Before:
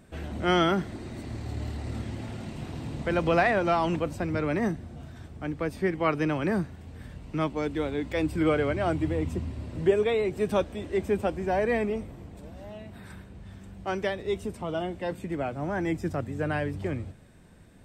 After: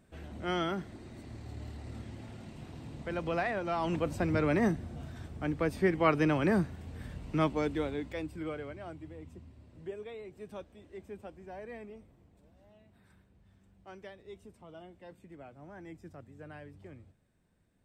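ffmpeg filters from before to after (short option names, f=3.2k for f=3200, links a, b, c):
-af "volume=-0.5dB,afade=t=in:st=3.7:d=0.52:silence=0.354813,afade=t=out:st=7.49:d=0.79:silence=0.237137,afade=t=out:st=8.28:d=0.72:silence=0.501187"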